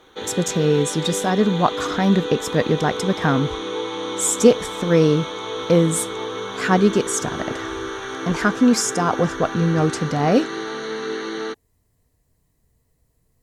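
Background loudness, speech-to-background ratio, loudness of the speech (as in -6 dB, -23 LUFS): -28.5 LUFS, 8.5 dB, -20.0 LUFS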